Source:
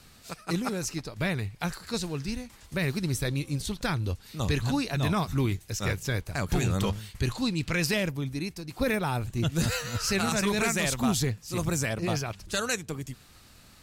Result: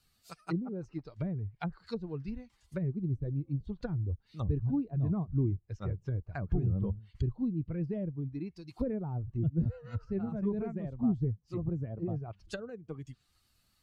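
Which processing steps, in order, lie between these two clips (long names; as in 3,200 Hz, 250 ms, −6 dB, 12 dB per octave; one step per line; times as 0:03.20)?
spectral dynamics exaggerated over time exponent 1.5
treble cut that deepens with the level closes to 390 Hz, closed at −30 dBFS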